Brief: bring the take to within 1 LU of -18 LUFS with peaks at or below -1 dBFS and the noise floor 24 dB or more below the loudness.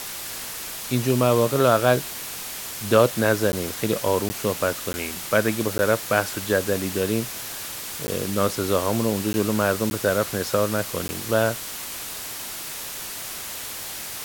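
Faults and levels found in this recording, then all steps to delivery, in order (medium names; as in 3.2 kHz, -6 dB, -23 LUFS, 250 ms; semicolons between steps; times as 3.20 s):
dropouts 8; longest dropout 10 ms; noise floor -34 dBFS; noise floor target -48 dBFS; loudness -24.0 LUFS; peak level -3.0 dBFS; loudness target -18.0 LUFS
-> interpolate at 3.52/4.29/4.93/5.78/8.07/9.33/9.90/11.08 s, 10 ms; noise print and reduce 14 dB; trim +6 dB; peak limiter -1 dBFS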